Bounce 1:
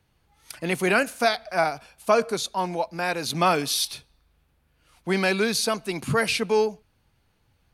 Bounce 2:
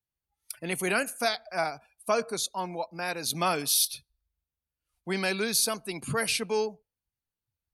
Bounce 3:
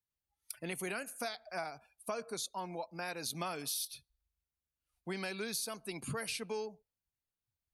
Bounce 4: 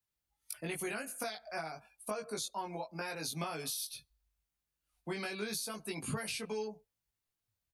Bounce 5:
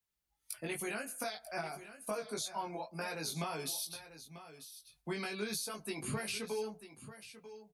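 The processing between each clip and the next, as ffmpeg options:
-af "afftdn=nr=22:nf=-44,aemphasis=mode=production:type=50fm,volume=-6.5dB"
-af "acompressor=threshold=-32dB:ratio=4,volume=-4.5dB"
-filter_complex "[0:a]acrossover=split=190[a][b];[b]acompressor=threshold=-39dB:ratio=6[c];[a][c]amix=inputs=2:normalize=0,asplit=2[d][e];[e]adelay=19,volume=-2dB[f];[d][f]amix=inputs=2:normalize=0,volume=1.5dB"
-af "flanger=delay=4.4:depth=4.8:regen=-57:speed=0.57:shape=sinusoidal,aecho=1:1:942:0.211,volume=4dB"

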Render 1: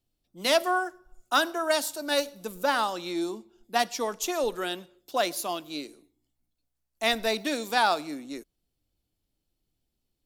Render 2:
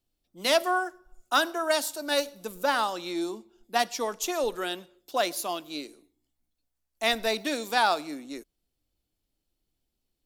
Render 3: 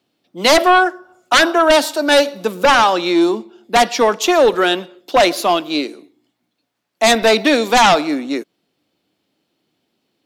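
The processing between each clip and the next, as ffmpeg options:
-af "equalizer=f=120:t=o:w=1.5:g=-4.5"
-filter_complex "[0:a]acrossover=split=140|4500[a][b][c];[a]acrusher=bits=6:mix=0:aa=0.000001[d];[b]aeval=exprs='0.316*sin(PI/2*3.55*val(0)/0.316)':c=same[e];[d][e][c]amix=inputs=3:normalize=0,volume=3.5dB"

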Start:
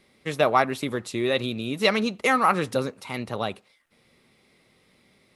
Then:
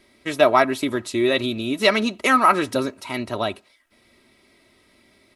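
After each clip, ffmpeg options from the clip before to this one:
-af "aecho=1:1:3.1:0.64,volume=3dB"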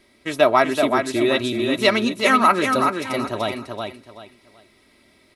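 -af "aecho=1:1:380|760|1140:0.562|0.146|0.038"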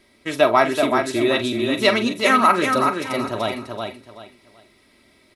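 -filter_complex "[0:a]asplit=2[a][b];[b]adelay=44,volume=-11dB[c];[a][c]amix=inputs=2:normalize=0"

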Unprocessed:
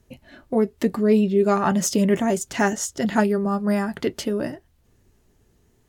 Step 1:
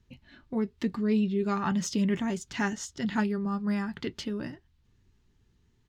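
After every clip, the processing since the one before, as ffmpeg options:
-af "firequalizer=gain_entry='entry(140,0);entry(630,-14);entry(900,-4);entry(3700,1);entry(10000,-16)':delay=0.05:min_phase=1,volume=-4.5dB"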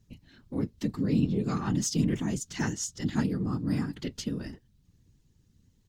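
-af "bass=f=250:g=10,treble=f=4k:g=13,afftfilt=real='hypot(re,im)*cos(2*PI*random(0))':imag='hypot(re,im)*sin(2*PI*random(1))':win_size=512:overlap=0.75"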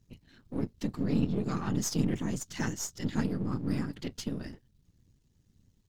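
-af "aeval=exprs='if(lt(val(0),0),0.447*val(0),val(0))':c=same"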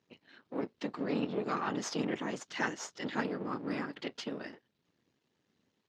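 -af "highpass=450,lowpass=3.2k,volume=5.5dB"

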